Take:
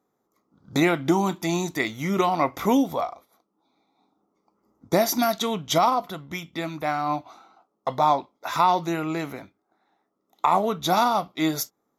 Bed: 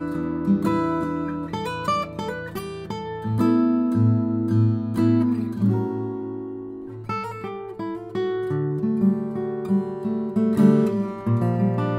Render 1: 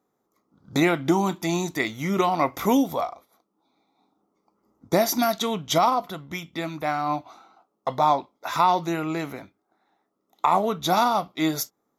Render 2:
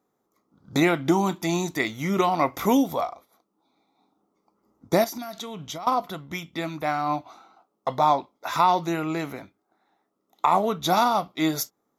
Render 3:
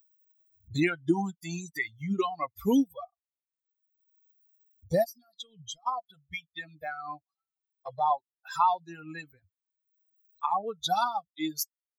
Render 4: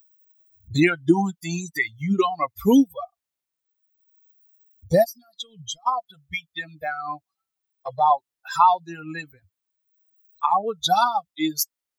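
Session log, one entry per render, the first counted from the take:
0:02.39–0:03.09: high-shelf EQ 6,800 Hz +5.5 dB
0:05.04–0:05.87: downward compressor 12 to 1, threshold −31 dBFS
spectral dynamics exaggerated over time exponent 3; upward compression, threshold −31 dBFS
level +8 dB

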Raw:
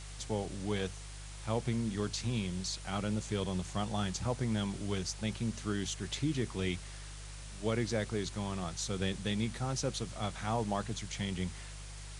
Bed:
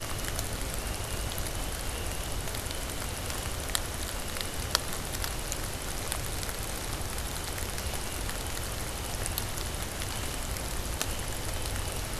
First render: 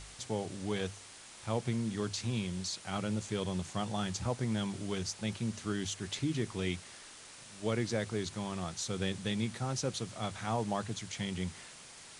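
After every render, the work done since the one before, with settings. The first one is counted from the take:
hum removal 50 Hz, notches 3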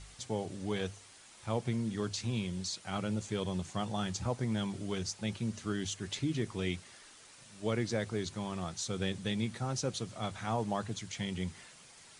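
broadband denoise 6 dB, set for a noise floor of −52 dBFS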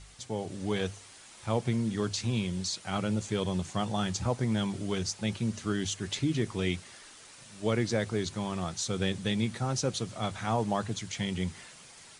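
automatic gain control gain up to 4.5 dB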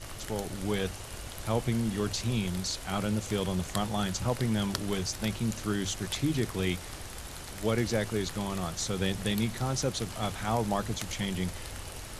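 mix in bed −8 dB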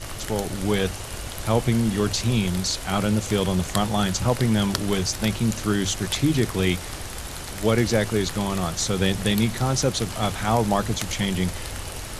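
level +8 dB
brickwall limiter −2 dBFS, peak gain reduction 1 dB

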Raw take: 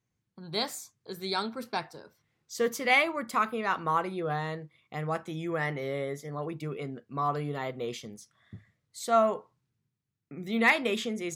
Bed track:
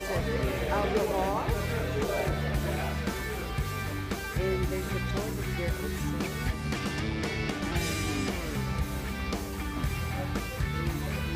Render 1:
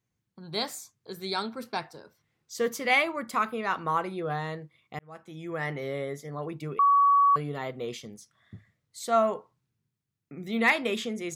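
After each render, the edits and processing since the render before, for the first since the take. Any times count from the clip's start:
0:04.99–0:05.73: fade in
0:06.79–0:07.36: beep over 1,130 Hz −17 dBFS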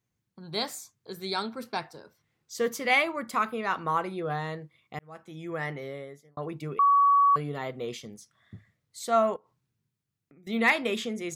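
0:05.55–0:06.37: fade out
0:09.36–0:10.47: downward compressor 4 to 1, threshold −57 dBFS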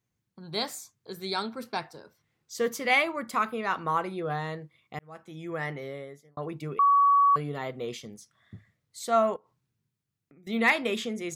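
no processing that can be heard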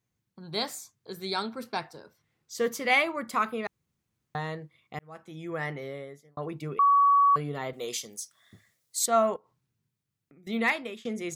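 0:03.67–0:04.35: fill with room tone
0:07.73–0:09.06: bass and treble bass −11 dB, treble +15 dB
0:10.49–0:11.05: fade out linear, to −21 dB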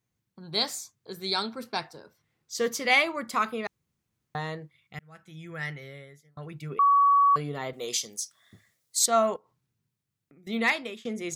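0:04.71–0:06.70: gain on a spectral selection 210–1,300 Hz −9 dB
dynamic equaliser 5,100 Hz, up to +7 dB, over −47 dBFS, Q 0.88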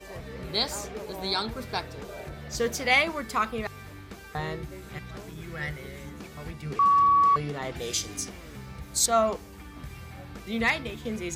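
mix in bed track −10.5 dB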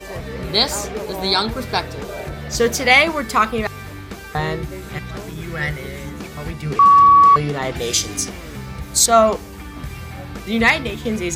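level +10.5 dB
brickwall limiter −2 dBFS, peak gain reduction 2.5 dB

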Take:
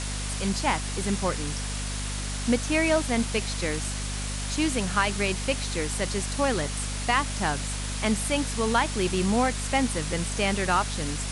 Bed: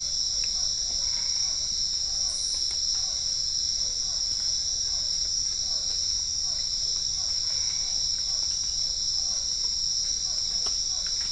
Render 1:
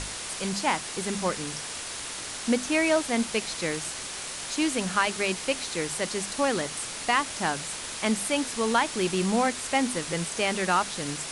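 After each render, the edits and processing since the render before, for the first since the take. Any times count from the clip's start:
mains-hum notches 50/100/150/200/250 Hz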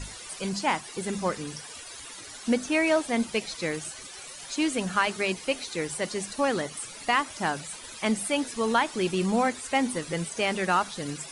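broadband denoise 15 dB, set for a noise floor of −37 dBFS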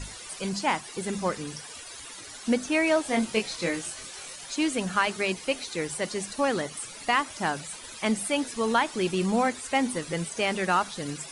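0:03.03–0:04.36: double-tracking delay 23 ms −3.5 dB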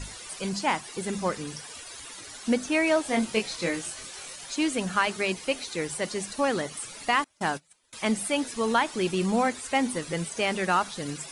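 0:07.24–0:07.93: noise gate −35 dBFS, range −27 dB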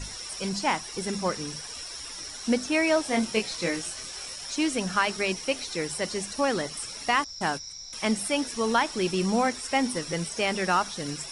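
mix in bed −13.5 dB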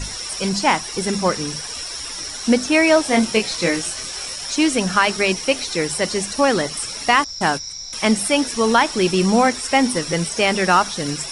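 level +9 dB
brickwall limiter −3 dBFS, peak gain reduction 2 dB

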